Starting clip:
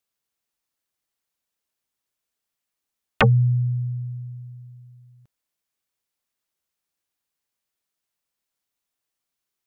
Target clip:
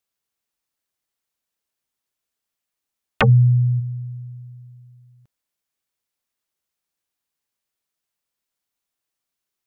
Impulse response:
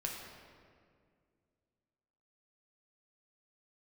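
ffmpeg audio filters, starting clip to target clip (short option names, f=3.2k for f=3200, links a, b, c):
-filter_complex "[0:a]asplit=3[a][b][c];[a]afade=t=out:st=3.27:d=0.02[d];[b]equalizer=f=210:t=o:w=1.1:g=13.5,afade=t=in:st=3.27:d=0.02,afade=t=out:st=3.79:d=0.02[e];[c]afade=t=in:st=3.79:d=0.02[f];[d][e][f]amix=inputs=3:normalize=0"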